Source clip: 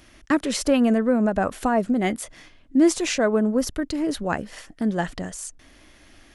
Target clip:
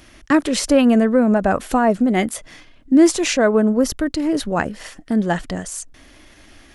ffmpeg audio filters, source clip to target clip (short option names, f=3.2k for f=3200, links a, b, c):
-af "atempo=0.94,volume=5dB"